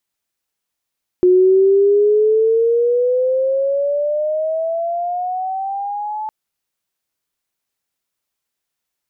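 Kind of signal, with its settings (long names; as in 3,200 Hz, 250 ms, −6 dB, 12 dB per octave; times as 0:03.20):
glide logarithmic 360 Hz → 870 Hz −7.5 dBFS → −21.5 dBFS 5.06 s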